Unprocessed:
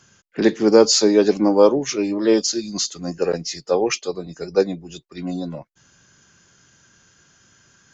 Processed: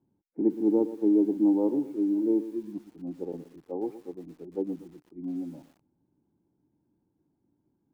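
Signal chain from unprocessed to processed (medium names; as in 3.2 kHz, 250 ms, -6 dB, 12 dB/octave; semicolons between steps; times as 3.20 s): vibrato 10 Hz 6.1 cents; cascade formant filter u; bit-crushed delay 119 ms, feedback 35%, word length 8-bit, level -13.5 dB; trim -2.5 dB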